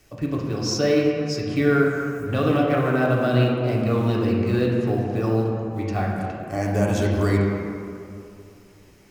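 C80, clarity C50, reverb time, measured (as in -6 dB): 2.0 dB, 0.5 dB, 2.6 s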